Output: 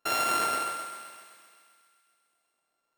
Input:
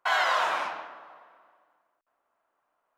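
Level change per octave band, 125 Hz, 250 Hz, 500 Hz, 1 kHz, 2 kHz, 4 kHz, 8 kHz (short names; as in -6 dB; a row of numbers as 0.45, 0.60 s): n/a, +9.5 dB, -3.0 dB, -2.0 dB, -7.0 dB, -2.0 dB, +11.0 dB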